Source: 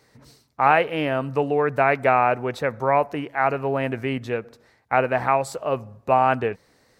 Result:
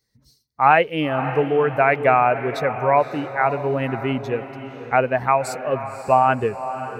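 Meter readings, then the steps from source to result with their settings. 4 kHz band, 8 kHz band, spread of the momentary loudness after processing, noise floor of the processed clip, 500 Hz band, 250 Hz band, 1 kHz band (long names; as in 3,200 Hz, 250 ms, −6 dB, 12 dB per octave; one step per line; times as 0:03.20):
+2.0 dB, can't be measured, 9 LU, −62 dBFS, +2.5 dB, +2.0 dB, +2.5 dB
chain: spectral dynamics exaggerated over time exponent 1.5
feedback delay with all-pass diffusion 553 ms, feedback 45%, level −11.5 dB
level +4.5 dB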